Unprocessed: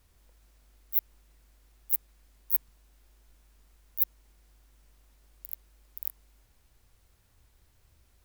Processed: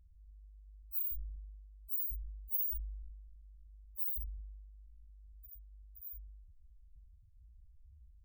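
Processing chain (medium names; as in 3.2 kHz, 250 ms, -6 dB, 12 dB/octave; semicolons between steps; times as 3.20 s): Schroeder reverb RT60 0.7 s, combs from 31 ms, DRR 14 dB; loudest bins only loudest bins 2; decay stretcher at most 31 dB/s; trim +6.5 dB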